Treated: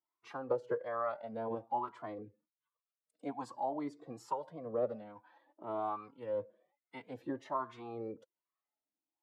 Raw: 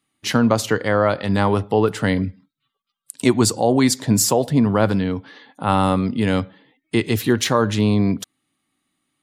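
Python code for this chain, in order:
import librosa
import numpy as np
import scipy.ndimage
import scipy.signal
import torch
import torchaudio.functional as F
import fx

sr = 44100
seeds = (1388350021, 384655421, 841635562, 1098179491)

y = fx.wah_lfo(x, sr, hz=1.2, low_hz=450.0, high_hz=1000.0, q=3.9)
y = fx.pitch_keep_formants(y, sr, semitones=2.0)
y = fx.comb_cascade(y, sr, direction='rising', hz=0.53)
y = F.gain(torch.from_numpy(y), -4.5).numpy()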